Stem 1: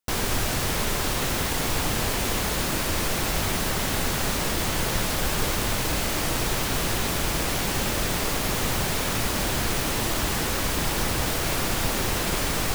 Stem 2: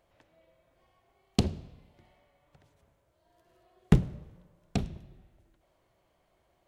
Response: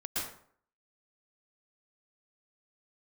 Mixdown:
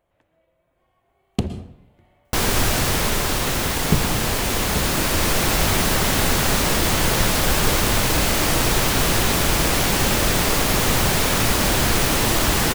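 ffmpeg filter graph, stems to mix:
-filter_complex "[0:a]adelay=2250,volume=1dB[a];[1:a]equalizer=f=5k:w=1.4:g=-8.5,volume=-2dB,asplit=2[b][c];[c]volume=-14.5dB[d];[2:a]atrim=start_sample=2205[e];[d][e]afir=irnorm=-1:irlink=0[f];[a][b][f]amix=inputs=3:normalize=0,dynaudnorm=f=220:g=9:m=6dB"

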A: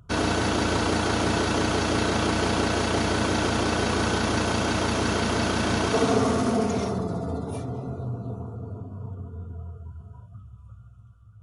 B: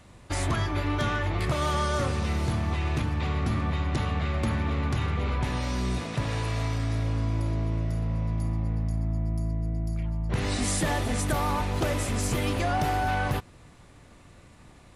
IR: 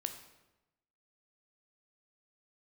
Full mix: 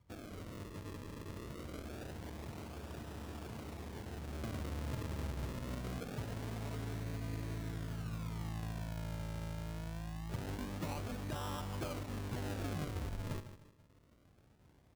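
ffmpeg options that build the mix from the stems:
-filter_complex "[0:a]acompressor=threshold=-26dB:ratio=6,volume=-18.5dB[a];[1:a]highpass=49,volume=-13dB,afade=t=in:st=3.96:d=0.78:silence=0.334965,asplit=2[b][c];[c]volume=-11dB,aecho=0:1:152|304|456|608|760:1|0.34|0.116|0.0393|0.0134[d];[a][b][d]amix=inputs=3:normalize=0,lowpass=f=1.2k:p=1,acrusher=samples=40:mix=1:aa=0.000001:lfo=1:lforange=40:lforate=0.24"

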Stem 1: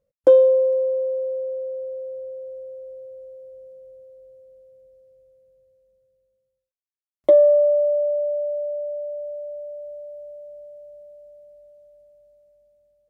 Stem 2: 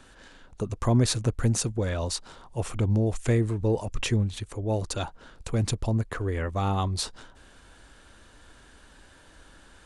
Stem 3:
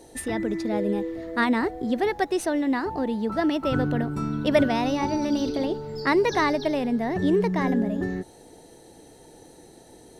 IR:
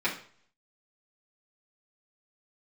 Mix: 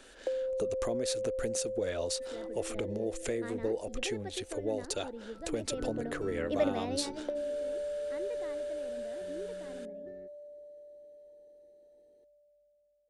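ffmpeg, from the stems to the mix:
-filter_complex "[0:a]acompressor=threshold=-26dB:ratio=6,volume=-11.5dB[a];[1:a]lowshelf=f=250:g=-8.5,acompressor=threshold=-33dB:ratio=6,volume=1.5dB[b];[2:a]lowpass=f=2.3k:p=1,adelay=2050,volume=-10.5dB,afade=t=in:st=5.55:d=0.59:silence=0.421697,afade=t=out:st=6.95:d=0.42:silence=0.223872[c];[a][b][c]amix=inputs=3:normalize=0,equalizer=f=125:t=o:w=1:g=-12,equalizer=f=500:t=o:w=1:g=7,equalizer=f=1k:t=o:w=1:g=-9"

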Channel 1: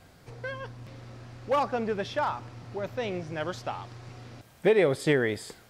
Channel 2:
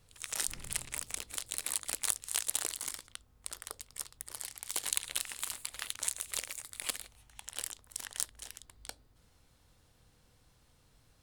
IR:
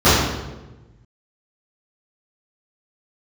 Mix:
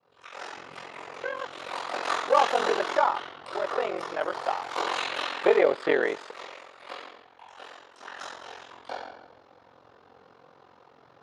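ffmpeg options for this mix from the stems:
-filter_complex "[0:a]adelay=800,volume=-0.5dB[a];[1:a]volume=3dB,afade=t=in:st=1.36:d=0.74:silence=0.316228,afade=t=out:st=5.16:d=0.52:silence=0.281838,afade=t=in:st=7.8:d=0.77:silence=0.354813,asplit=2[b][c];[c]volume=-7.5dB[d];[2:a]atrim=start_sample=2205[e];[d][e]afir=irnorm=-1:irlink=0[f];[a][b][f]amix=inputs=3:normalize=0,equalizer=f=780:w=0.49:g=9.5,aeval=exprs='val(0)*sin(2*PI*22*n/s)':c=same,highpass=390,lowpass=3.5k"

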